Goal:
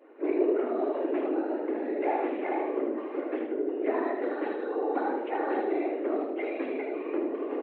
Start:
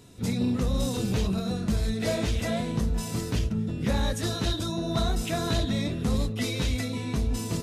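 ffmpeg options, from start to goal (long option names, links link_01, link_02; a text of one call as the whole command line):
ffmpeg -i in.wav -filter_complex "[0:a]afftfilt=real='hypot(re,im)*cos(2*PI*random(0))':imag='hypot(re,im)*sin(2*PI*random(1))':win_size=512:overlap=0.75,highpass=frequency=180:width_type=q:width=0.5412,highpass=frequency=180:width_type=q:width=1.307,lowpass=frequency=2100:width_type=q:width=0.5176,lowpass=frequency=2100:width_type=q:width=0.7071,lowpass=frequency=2100:width_type=q:width=1.932,afreqshift=130,adynamicequalizer=threshold=0.00251:dfrequency=1400:dqfactor=0.83:tfrequency=1400:tqfactor=0.83:attack=5:release=100:ratio=0.375:range=2.5:mode=cutabove:tftype=bell,asplit=2[link_01][link_02];[link_02]aecho=0:1:77|154|231|308|385:0.531|0.202|0.0767|0.0291|0.0111[link_03];[link_01][link_03]amix=inputs=2:normalize=0,volume=7dB" out.wav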